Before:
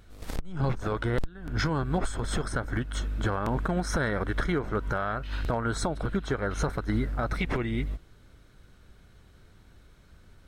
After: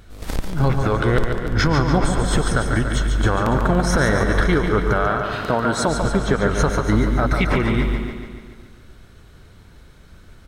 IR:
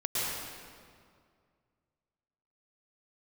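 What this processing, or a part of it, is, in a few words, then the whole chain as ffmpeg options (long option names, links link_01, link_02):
keyed gated reverb: -filter_complex "[0:a]asettb=1/sr,asplit=3[link_01][link_02][link_03];[link_01]atrim=end=5.064[link_04];[link_02]atrim=start=5.06:end=5.88,asetpts=PTS-STARTPTS,afade=type=in:duration=0.004:curve=qsin,afade=type=out:start_time=0.816:duration=0.004:curve=qsin,highpass=140[link_05];[link_03]atrim=start=5.876[link_06];[link_04][link_05]acrossfade=duration=0.004:curve1=hsin:curve2=qsin[link_07];[link_07][link_06]acrossfade=duration=0.004:curve1=qsin:curve2=hsin,asplit=3[link_08][link_09][link_10];[1:a]atrim=start_sample=2205[link_11];[link_09][link_11]afir=irnorm=-1:irlink=0[link_12];[link_10]apad=whole_len=462164[link_13];[link_12][link_13]sidechaingate=range=-33dB:threshold=-50dB:ratio=16:detection=peak,volume=-17dB[link_14];[link_08][link_14]amix=inputs=2:normalize=0,aecho=1:1:143|286|429|572|715|858|1001:0.473|0.27|0.154|0.0876|0.0499|0.0285|0.0162,volume=8dB"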